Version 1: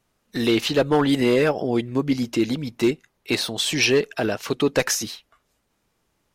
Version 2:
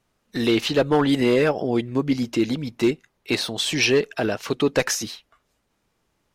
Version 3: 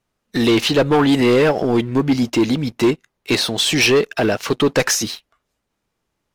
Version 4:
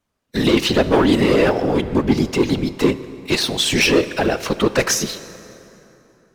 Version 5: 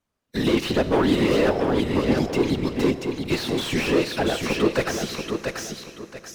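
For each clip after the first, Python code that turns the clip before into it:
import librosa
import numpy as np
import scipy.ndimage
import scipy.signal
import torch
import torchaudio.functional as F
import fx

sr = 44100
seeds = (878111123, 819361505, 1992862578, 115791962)

y1 = fx.high_shelf(x, sr, hz=9100.0, db=-5.5)
y2 = fx.leveller(y1, sr, passes=2)
y3 = fx.whisperise(y2, sr, seeds[0])
y3 = fx.rev_plate(y3, sr, seeds[1], rt60_s=3.3, hf_ratio=0.65, predelay_ms=0, drr_db=13.5)
y3 = y3 * librosa.db_to_amplitude(-1.0)
y4 = fx.echo_feedback(y3, sr, ms=684, feedback_pct=28, wet_db=-6.0)
y4 = fx.slew_limit(y4, sr, full_power_hz=240.0)
y4 = y4 * librosa.db_to_amplitude(-5.0)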